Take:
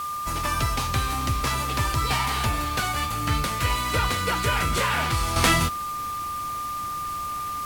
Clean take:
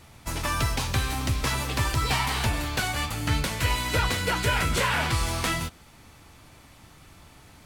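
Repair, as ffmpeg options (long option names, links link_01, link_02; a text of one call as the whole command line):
ffmpeg -i in.wav -af "bandreject=frequency=1200:width=30,afwtdn=0.0079,asetnsamples=nb_out_samples=441:pad=0,asendcmd='5.36 volume volume -7.5dB',volume=0dB" out.wav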